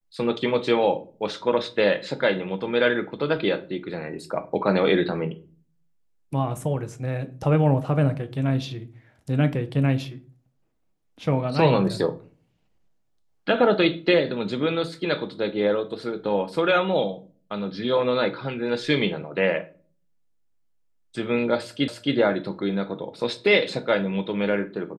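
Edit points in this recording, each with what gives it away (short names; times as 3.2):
21.88 repeat of the last 0.27 s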